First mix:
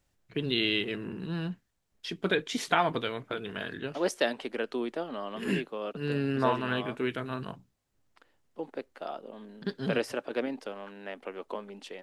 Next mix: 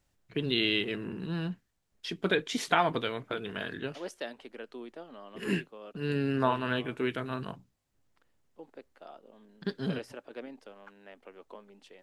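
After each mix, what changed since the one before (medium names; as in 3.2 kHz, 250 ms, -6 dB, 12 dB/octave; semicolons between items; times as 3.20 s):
second voice -11.0 dB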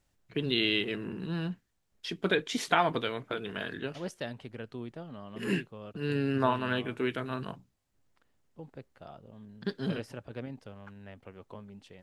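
second voice: remove high-pass 270 Hz 24 dB/octave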